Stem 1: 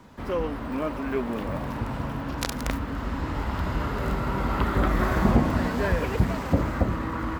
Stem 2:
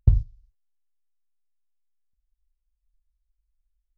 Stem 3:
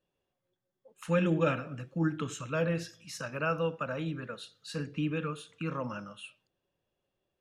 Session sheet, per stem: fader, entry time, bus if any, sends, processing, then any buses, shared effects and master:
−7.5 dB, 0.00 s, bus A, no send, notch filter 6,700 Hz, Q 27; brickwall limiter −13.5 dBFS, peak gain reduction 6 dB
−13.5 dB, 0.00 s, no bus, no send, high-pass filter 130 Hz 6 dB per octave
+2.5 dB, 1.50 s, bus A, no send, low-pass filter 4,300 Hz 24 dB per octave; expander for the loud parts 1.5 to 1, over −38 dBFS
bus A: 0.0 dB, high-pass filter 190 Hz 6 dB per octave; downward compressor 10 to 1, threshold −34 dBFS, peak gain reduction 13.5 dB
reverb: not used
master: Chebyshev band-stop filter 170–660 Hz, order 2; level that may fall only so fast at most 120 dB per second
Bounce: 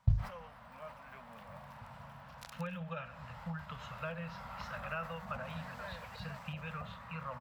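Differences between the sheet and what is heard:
stem 1 −7.5 dB → −15.5 dB
stem 2 −13.5 dB → −5.5 dB

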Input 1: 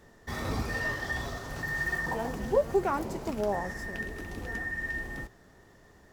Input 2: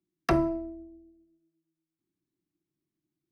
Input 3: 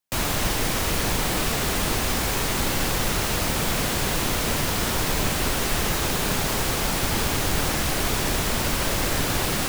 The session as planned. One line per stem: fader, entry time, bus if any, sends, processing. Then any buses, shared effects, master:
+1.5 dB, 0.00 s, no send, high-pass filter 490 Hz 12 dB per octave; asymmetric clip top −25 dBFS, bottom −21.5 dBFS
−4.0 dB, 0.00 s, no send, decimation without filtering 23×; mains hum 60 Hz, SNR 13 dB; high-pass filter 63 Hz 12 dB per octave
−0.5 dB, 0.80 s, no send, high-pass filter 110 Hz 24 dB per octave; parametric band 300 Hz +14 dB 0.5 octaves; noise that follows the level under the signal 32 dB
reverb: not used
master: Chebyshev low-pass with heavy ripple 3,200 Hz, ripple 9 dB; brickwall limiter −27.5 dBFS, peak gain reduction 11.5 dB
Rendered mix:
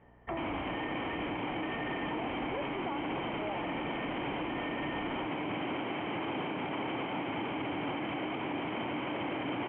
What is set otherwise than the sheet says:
stem 1: missing high-pass filter 490 Hz 12 dB per octave
stem 2: missing decimation without filtering 23×
stem 3: entry 0.80 s → 0.25 s

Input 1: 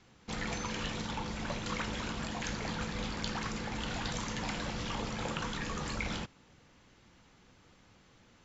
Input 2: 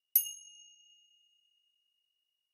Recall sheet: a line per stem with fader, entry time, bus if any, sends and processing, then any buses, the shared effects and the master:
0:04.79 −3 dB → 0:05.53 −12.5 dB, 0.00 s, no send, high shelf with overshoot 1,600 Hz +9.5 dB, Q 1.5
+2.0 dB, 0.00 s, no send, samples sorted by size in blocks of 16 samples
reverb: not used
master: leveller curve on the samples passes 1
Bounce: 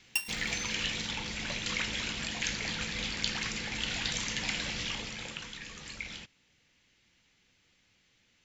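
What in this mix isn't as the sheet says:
stem 2 +2.0 dB → −4.5 dB
master: missing leveller curve on the samples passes 1

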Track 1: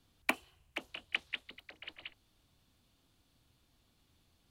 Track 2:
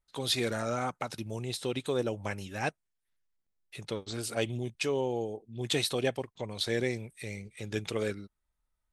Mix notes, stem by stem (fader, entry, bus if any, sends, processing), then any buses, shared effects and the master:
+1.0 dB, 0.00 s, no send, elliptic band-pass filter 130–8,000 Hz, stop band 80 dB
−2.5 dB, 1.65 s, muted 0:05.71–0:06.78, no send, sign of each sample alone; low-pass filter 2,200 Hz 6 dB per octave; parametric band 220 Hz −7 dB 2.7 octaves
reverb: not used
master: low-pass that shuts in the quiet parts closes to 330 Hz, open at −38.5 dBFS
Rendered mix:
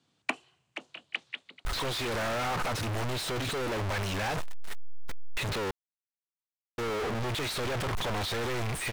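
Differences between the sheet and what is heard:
stem 2 −2.5 dB → +8.0 dB
master: missing low-pass that shuts in the quiet parts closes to 330 Hz, open at −38.5 dBFS

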